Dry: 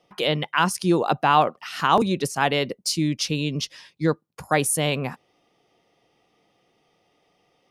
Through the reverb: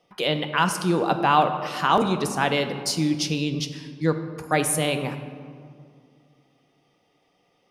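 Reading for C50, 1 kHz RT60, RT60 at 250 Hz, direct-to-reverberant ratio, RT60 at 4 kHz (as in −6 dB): 9.5 dB, 2.1 s, 2.9 s, 7.0 dB, 1.1 s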